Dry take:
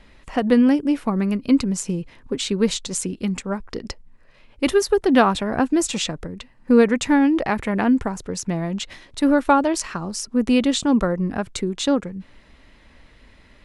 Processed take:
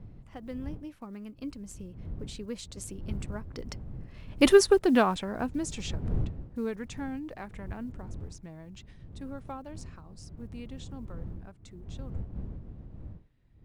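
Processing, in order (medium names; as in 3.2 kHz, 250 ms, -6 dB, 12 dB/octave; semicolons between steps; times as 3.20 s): block-companded coder 7-bit; Doppler pass-by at 4.52 s, 16 m/s, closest 3.1 m; wind noise 110 Hz -42 dBFS; in parallel at -2.5 dB: compression, threshold -44 dBFS, peak gain reduction 28 dB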